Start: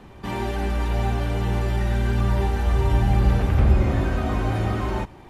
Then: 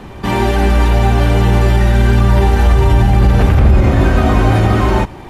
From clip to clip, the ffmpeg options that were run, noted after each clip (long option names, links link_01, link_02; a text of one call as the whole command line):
ffmpeg -i in.wav -af "alimiter=level_in=14dB:limit=-1dB:release=50:level=0:latency=1,volume=-1dB" out.wav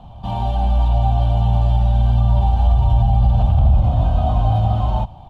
ffmpeg -i in.wav -af "firequalizer=gain_entry='entry(120,0);entry(390,-24);entry(690,3);entry(1100,-10);entry(1900,-29);entry(3100,-5);entry(5300,-18);entry(11000,-21)':delay=0.05:min_phase=1,volume=-4dB" out.wav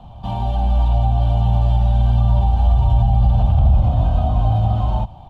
ffmpeg -i in.wav -filter_complex "[0:a]acrossover=split=470[link_01][link_02];[link_02]acompressor=threshold=-27dB:ratio=2.5[link_03];[link_01][link_03]amix=inputs=2:normalize=0" out.wav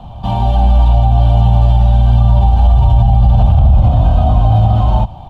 ffmpeg -i in.wav -af "alimiter=level_in=9dB:limit=-1dB:release=50:level=0:latency=1,volume=-1dB" out.wav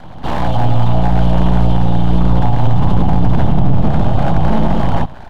ffmpeg -i in.wav -af "aeval=exprs='abs(val(0))':channel_layout=same" out.wav